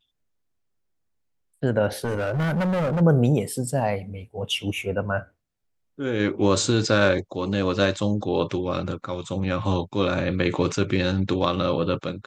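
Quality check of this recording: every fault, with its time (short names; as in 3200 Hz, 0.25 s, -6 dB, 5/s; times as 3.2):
2.04–3.02 clipped -21 dBFS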